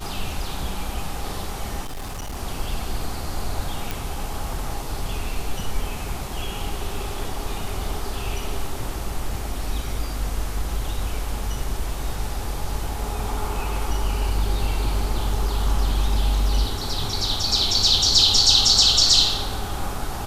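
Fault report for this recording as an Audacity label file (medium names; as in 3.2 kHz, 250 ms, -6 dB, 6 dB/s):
1.850000	2.370000	clipped -27.5 dBFS
3.910000	3.910000	pop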